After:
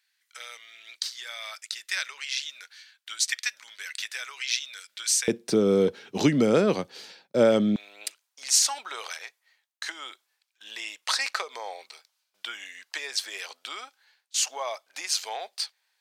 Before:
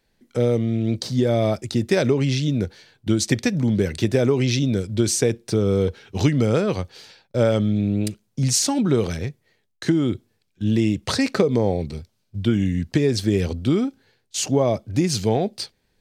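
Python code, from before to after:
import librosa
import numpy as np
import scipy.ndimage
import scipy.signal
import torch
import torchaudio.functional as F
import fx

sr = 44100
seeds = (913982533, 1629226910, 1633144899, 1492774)

y = fx.highpass(x, sr, hz=fx.steps((0.0, 1400.0), (5.28, 180.0), (7.76, 890.0)), slope=24)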